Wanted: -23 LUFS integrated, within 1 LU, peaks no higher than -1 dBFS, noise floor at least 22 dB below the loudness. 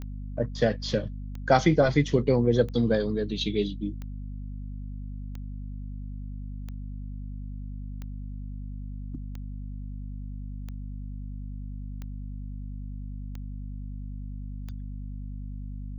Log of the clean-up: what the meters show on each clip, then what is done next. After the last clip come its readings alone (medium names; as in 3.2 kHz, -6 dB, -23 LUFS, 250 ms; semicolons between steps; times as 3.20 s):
clicks found 12; hum 50 Hz; highest harmonic 250 Hz; hum level -34 dBFS; loudness -31.0 LUFS; peak level -8.5 dBFS; loudness target -23.0 LUFS
-> de-click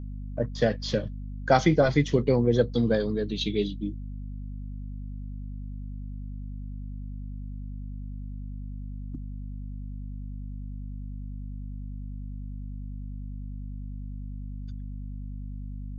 clicks found 0; hum 50 Hz; highest harmonic 250 Hz; hum level -34 dBFS
-> hum notches 50/100/150/200/250 Hz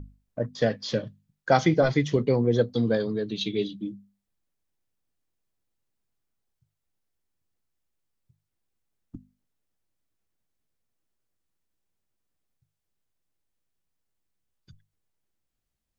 hum not found; loudness -25.5 LUFS; peak level -8.5 dBFS; loudness target -23.0 LUFS
-> trim +2.5 dB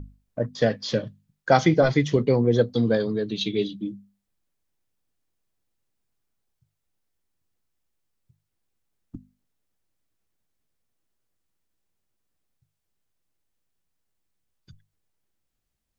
loudness -23.0 LUFS; peak level -6.0 dBFS; noise floor -79 dBFS